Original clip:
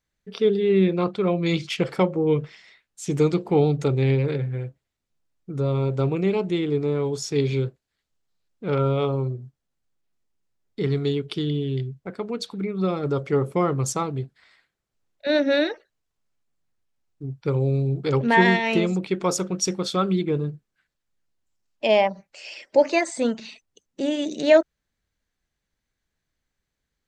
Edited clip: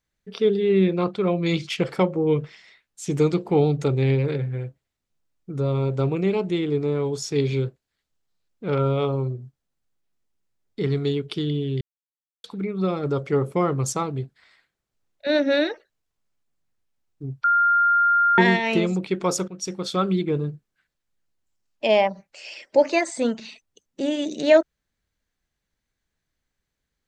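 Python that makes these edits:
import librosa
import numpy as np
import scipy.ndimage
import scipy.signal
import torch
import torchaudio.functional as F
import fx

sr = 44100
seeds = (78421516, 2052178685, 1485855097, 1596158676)

y = fx.edit(x, sr, fx.silence(start_s=11.81, length_s=0.63),
    fx.bleep(start_s=17.44, length_s=0.94, hz=1400.0, db=-15.0),
    fx.fade_in_from(start_s=19.48, length_s=0.51, floor_db=-13.5), tone=tone)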